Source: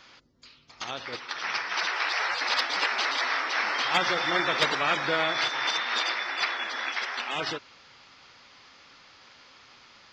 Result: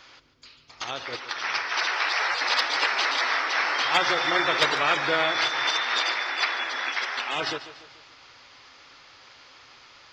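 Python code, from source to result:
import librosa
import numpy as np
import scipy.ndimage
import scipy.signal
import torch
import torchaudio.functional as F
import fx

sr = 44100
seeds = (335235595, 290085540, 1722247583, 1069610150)

y = fx.peak_eq(x, sr, hz=200.0, db=-14.0, octaves=0.33)
y = fx.echo_feedback(y, sr, ms=145, feedback_pct=47, wet_db=-14)
y = y * librosa.db_to_amplitude(2.5)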